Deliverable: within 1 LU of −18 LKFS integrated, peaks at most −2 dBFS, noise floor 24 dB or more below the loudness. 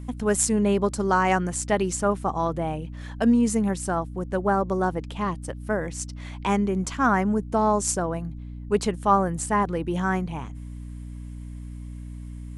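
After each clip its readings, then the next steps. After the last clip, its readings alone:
mains hum 60 Hz; hum harmonics up to 300 Hz; level of the hum −33 dBFS; integrated loudness −24.5 LKFS; sample peak −7.0 dBFS; target loudness −18.0 LKFS
→ hum removal 60 Hz, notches 5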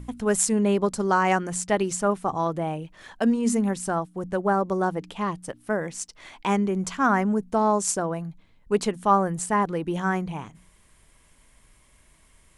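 mains hum none found; integrated loudness −25.0 LKFS; sample peak −7.0 dBFS; target loudness −18.0 LKFS
→ level +7 dB
brickwall limiter −2 dBFS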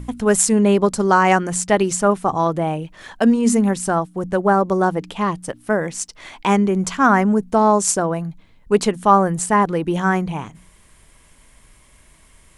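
integrated loudness −18.0 LKFS; sample peak −2.0 dBFS; background noise floor −52 dBFS

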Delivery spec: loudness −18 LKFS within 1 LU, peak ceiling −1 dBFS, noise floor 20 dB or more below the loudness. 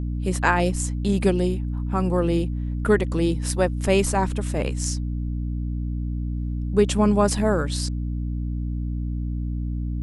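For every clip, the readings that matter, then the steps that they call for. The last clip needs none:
mains hum 60 Hz; hum harmonics up to 300 Hz; level of the hum −24 dBFS; integrated loudness −24.0 LKFS; sample peak −5.0 dBFS; target loudness −18.0 LKFS
→ hum removal 60 Hz, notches 5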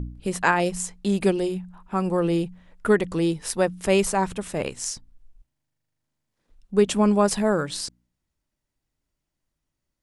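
mains hum none found; integrated loudness −24.0 LKFS; sample peak −5.0 dBFS; target loudness −18.0 LKFS
→ level +6 dB
brickwall limiter −1 dBFS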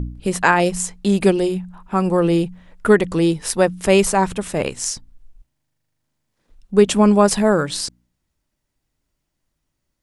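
integrated loudness −18.0 LKFS; sample peak −1.0 dBFS; background noise floor −76 dBFS

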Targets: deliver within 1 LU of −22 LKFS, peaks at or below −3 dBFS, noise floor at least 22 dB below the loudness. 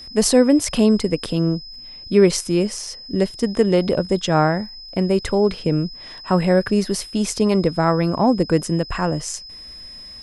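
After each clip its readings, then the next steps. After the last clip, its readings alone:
crackle rate 57 per second; interfering tone 5,100 Hz; level of the tone −36 dBFS; integrated loudness −19.5 LKFS; sample peak −3.0 dBFS; target loudness −22.0 LKFS
→ click removal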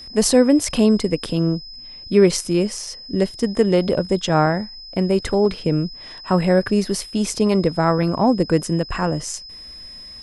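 crackle rate 0.098 per second; interfering tone 5,100 Hz; level of the tone −36 dBFS
→ notch filter 5,100 Hz, Q 30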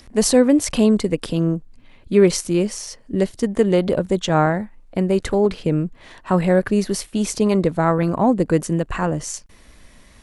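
interfering tone none found; integrated loudness −19.5 LKFS; sample peak −3.0 dBFS; target loudness −22.0 LKFS
→ level −2.5 dB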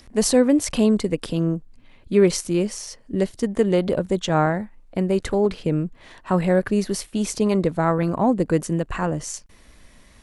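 integrated loudness −22.0 LKFS; sample peak −5.5 dBFS; background noise floor −51 dBFS

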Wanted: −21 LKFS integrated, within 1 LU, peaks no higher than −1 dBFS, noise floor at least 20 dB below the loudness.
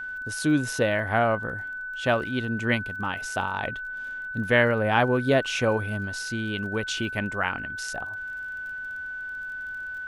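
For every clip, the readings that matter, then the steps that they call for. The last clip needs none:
crackle rate 31 per second; interfering tone 1,500 Hz; level of the tone −32 dBFS; integrated loudness −27.0 LKFS; sample peak −6.0 dBFS; target loudness −21.0 LKFS
→ click removal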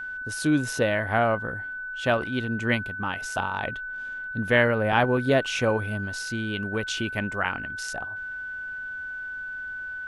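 crackle rate 0 per second; interfering tone 1,500 Hz; level of the tone −32 dBFS
→ notch filter 1,500 Hz, Q 30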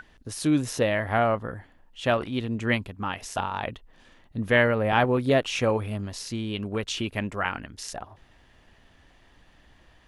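interfering tone none found; integrated loudness −26.5 LKFS; sample peak −7.0 dBFS; target loudness −21.0 LKFS
→ level +5.5 dB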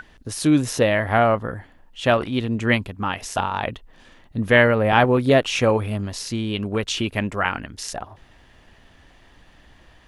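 integrated loudness −21.0 LKFS; sample peak −1.5 dBFS; background noise floor −53 dBFS

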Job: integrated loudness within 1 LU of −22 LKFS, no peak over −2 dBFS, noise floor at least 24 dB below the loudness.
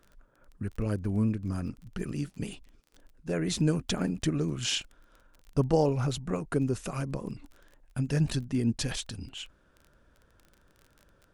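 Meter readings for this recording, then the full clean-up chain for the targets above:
crackle rate 21 per second; integrated loudness −31.0 LKFS; sample peak −13.0 dBFS; target loudness −22.0 LKFS
→ click removal
level +9 dB

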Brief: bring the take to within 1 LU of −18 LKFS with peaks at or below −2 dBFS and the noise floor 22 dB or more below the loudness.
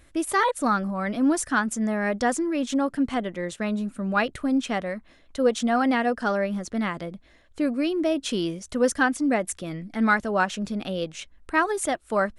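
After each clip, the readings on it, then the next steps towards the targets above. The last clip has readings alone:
integrated loudness −25.5 LKFS; sample peak −7.5 dBFS; target loudness −18.0 LKFS
→ level +7.5 dB
brickwall limiter −2 dBFS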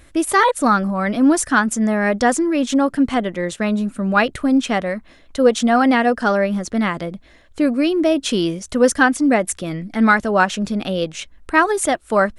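integrated loudness −18.0 LKFS; sample peak −2.0 dBFS; background noise floor −48 dBFS

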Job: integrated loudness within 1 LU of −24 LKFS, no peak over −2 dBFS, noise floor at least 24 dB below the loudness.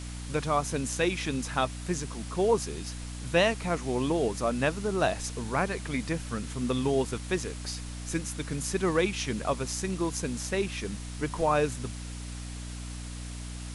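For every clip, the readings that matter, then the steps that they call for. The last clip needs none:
mains hum 60 Hz; hum harmonics up to 300 Hz; level of the hum −37 dBFS; background noise floor −39 dBFS; target noise floor −55 dBFS; integrated loudness −30.5 LKFS; sample peak −11.5 dBFS; target loudness −24.0 LKFS
→ hum removal 60 Hz, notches 5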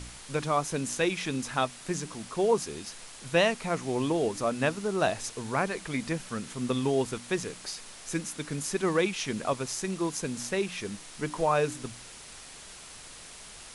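mains hum none found; background noise floor −47 dBFS; target noise floor −55 dBFS
→ broadband denoise 8 dB, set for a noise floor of −47 dBFS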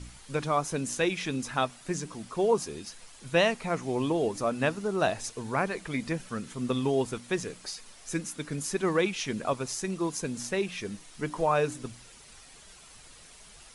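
background noise floor −52 dBFS; target noise floor −55 dBFS
→ broadband denoise 6 dB, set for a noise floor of −52 dBFS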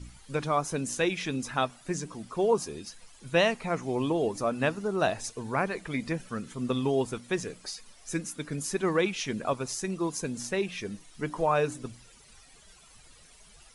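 background noise floor −55 dBFS; integrated loudness −30.5 LKFS; sample peak −12.5 dBFS; target loudness −24.0 LKFS
→ level +6.5 dB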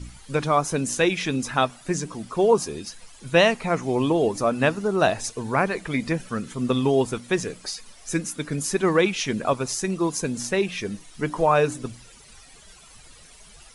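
integrated loudness −24.0 LKFS; sample peak −6.0 dBFS; background noise floor −49 dBFS

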